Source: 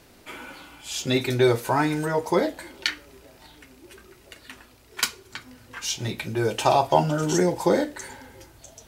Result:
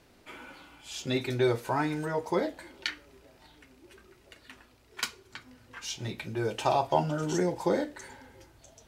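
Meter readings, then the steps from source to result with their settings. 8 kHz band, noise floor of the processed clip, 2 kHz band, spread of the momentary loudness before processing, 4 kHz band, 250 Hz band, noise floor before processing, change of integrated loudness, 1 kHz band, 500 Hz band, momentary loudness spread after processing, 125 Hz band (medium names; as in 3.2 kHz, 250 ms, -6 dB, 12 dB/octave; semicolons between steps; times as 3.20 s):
-10.0 dB, -61 dBFS, -7.0 dB, 20 LU, -8.0 dB, -6.5 dB, -54 dBFS, -7.0 dB, -6.5 dB, -6.5 dB, 21 LU, -6.5 dB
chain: treble shelf 7.6 kHz -8 dB; trim -6.5 dB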